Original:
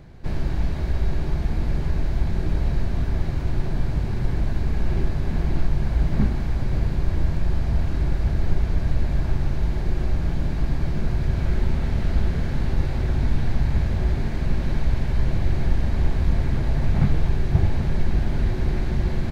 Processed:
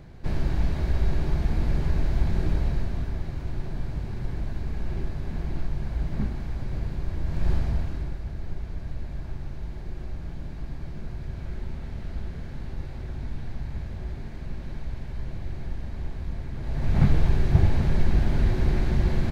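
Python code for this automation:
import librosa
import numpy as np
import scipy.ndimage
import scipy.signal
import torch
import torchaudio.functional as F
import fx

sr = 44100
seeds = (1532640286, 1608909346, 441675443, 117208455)

y = fx.gain(x, sr, db=fx.line((2.45, -1.0), (3.22, -7.5), (7.24, -7.5), (7.5, -0.5), (8.23, -12.0), (16.54, -12.0), (17.02, 0.0)))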